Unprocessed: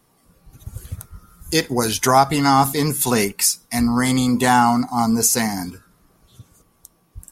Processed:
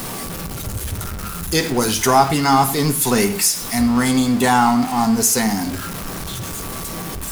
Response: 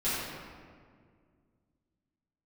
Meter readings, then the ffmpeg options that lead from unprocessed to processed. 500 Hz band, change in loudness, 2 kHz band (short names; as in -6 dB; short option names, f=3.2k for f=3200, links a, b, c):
+1.5 dB, -0.5 dB, +1.5 dB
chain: -filter_complex "[0:a]aeval=exprs='val(0)+0.5*0.0841*sgn(val(0))':c=same,asplit=2[a][b];[1:a]atrim=start_sample=2205,afade=t=out:st=0.18:d=0.01,atrim=end_sample=8379[c];[b][c]afir=irnorm=-1:irlink=0,volume=-16.5dB[d];[a][d]amix=inputs=2:normalize=0,volume=-2dB"